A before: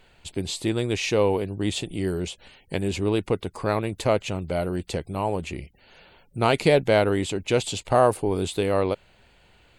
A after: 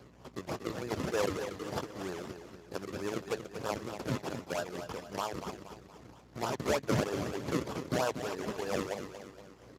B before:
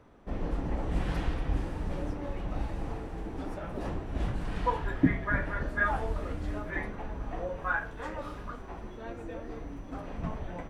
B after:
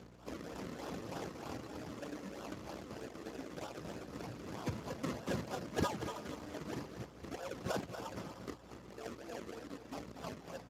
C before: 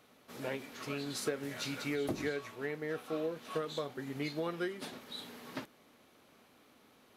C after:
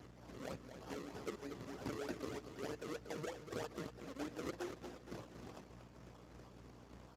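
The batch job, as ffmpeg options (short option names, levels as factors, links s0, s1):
-af "highpass=f=1200:p=1,afwtdn=0.00794,acompressor=mode=upward:threshold=0.0178:ratio=2.5,aresample=11025,asoftclip=type=tanh:threshold=0.1,aresample=44100,aeval=exprs='val(0)+0.00224*(sin(2*PI*60*n/s)+sin(2*PI*2*60*n/s)/2+sin(2*PI*3*60*n/s)/3+sin(2*PI*4*60*n/s)/4+sin(2*PI*5*60*n/s)/5)':c=same,tremolo=f=3.3:d=0.36,acrusher=samples=39:mix=1:aa=0.000001:lfo=1:lforange=39:lforate=3.2,aecho=1:1:236|472|708|944|1180:0.355|0.17|0.0817|0.0392|0.0188" -ar 32000 -c:a libspeex -b:a 15k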